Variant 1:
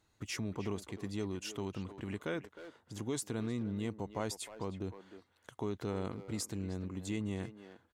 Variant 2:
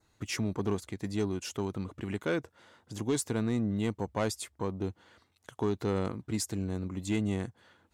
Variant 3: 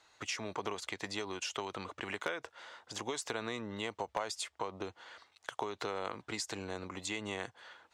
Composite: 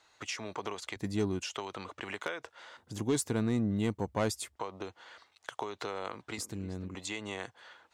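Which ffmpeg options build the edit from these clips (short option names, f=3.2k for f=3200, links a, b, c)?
-filter_complex "[1:a]asplit=2[a][b];[2:a]asplit=4[c][d][e][f];[c]atrim=end=0.962[g];[a]atrim=start=0.958:end=1.432[h];[d]atrim=start=1.428:end=2.772[i];[b]atrim=start=2.768:end=4.562[j];[e]atrim=start=4.558:end=6.382[k];[0:a]atrim=start=6.378:end=6.952[l];[f]atrim=start=6.948[m];[g][h]acrossfade=d=0.004:c1=hsin:c2=hsin[n];[n][i]acrossfade=d=0.004:c1=hsin:c2=hsin[o];[o][j]acrossfade=d=0.004:c1=hsin:c2=hsin[p];[p][k]acrossfade=d=0.004:c1=hsin:c2=hsin[q];[q][l]acrossfade=d=0.004:c1=hsin:c2=hsin[r];[r][m]acrossfade=d=0.004:c1=hsin:c2=hsin"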